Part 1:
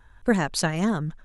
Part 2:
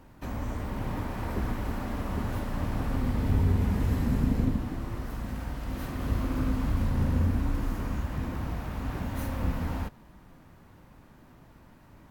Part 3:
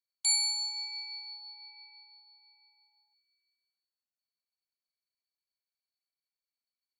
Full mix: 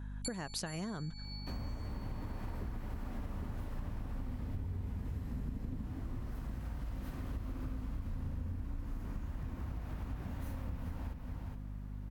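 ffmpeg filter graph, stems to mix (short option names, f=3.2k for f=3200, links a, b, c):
-filter_complex "[0:a]acompressor=threshold=-23dB:ratio=6,volume=-2dB,asplit=2[a][b];[1:a]lowshelf=f=140:g=7,adelay=1250,volume=-5.5dB,asplit=2[c][d];[d]volume=-10.5dB[e];[2:a]dynaudnorm=f=150:g=3:m=8.5dB,volume=-14.5dB,asplit=2[f][g];[g]volume=-10.5dB[h];[b]apad=whole_len=308467[i];[f][i]sidechaincompress=threshold=-39dB:ratio=8:attack=16:release=293[j];[e][h]amix=inputs=2:normalize=0,aecho=0:1:416:1[k];[a][c][j][k]amix=inputs=4:normalize=0,aeval=exprs='val(0)+0.00794*(sin(2*PI*50*n/s)+sin(2*PI*2*50*n/s)/2+sin(2*PI*3*50*n/s)/3+sin(2*PI*4*50*n/s)/4+sin(2*PI*5*50*n/s)/5)':c=same,acompressor=threshold=-37dB:ratio=6"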